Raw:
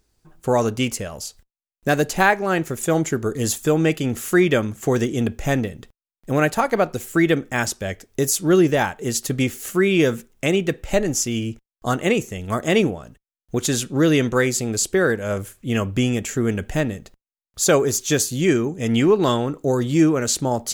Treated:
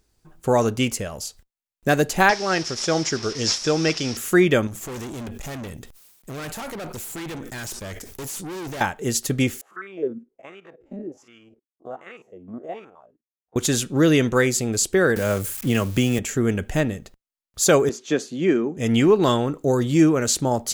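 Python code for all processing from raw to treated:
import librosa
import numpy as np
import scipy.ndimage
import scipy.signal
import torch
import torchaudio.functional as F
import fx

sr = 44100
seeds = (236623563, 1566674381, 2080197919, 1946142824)

y = fx.chain(x, sr, fx.delta_mod(bps=64000, step_db=-31.5),
    fx.lowpass_res(hz=5400.0, q=9.0),
    fx.low_shelf(hz=400.0, db=-6.0), at=(2.29, 4.17))
y = fx.chain(y, sr, fx.high_shelf(hz=4800.0, db=9.5),
    fx.tube_stage(drive_db=31.0, bias=0.6),
    fx.sustainer(db_per_s=48.0), at=(4.67, 8.81))
y = fx.chain(y, sr, fx.spec_steps(hold_ms=50),
    fx.wah_lfo(hz=1.3, low_hz=240.0, high_hz=1400.0, q=5.6), at=(9.61, 13.56))
y = fx.chain(y, sr, fx.crossing_spikes(level_db=-27.0),
    fx.band_squash(depth_pct=70), at=(15.16, 16.19))
y = fx.chain(y, sr, fx.highpass(hz=190.0, slope=24),
    fx.spacing_loss(db_at_10k=23), at=(17.89, 18.77))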